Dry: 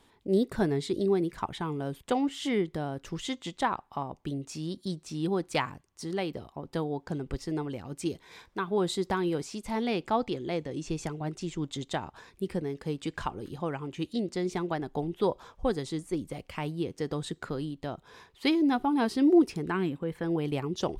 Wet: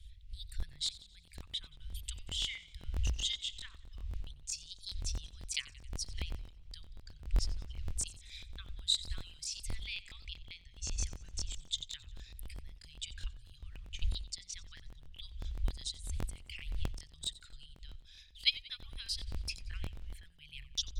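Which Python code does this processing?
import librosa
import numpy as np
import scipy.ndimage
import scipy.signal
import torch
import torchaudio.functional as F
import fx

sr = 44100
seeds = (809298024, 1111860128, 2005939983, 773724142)

y = fx.envelope_sharpen(x, sr, power=1.5)
y = fx.dmg_wind(y, sr, seeds[0], corner_hz=200.0, level_db=-42.0)
y = scipy.signal.sosfilt(scipy.signal.cheby2(4, 80, [250.0, 720.0], 'bandstop', fs=sr, output='sos'), y)
y = fx.buffer_crackle(y, sr, first_s=0.58, period_s=0.13, block=1024, kind='repeat')
y = fx.echo_warbled(y, sr, ms=90, feedback_pct=52, rate_hz=2.8, cents=73, wet_db=-18.5)
y = F.gain(torch.from_numpy(y), 5.5).numpy()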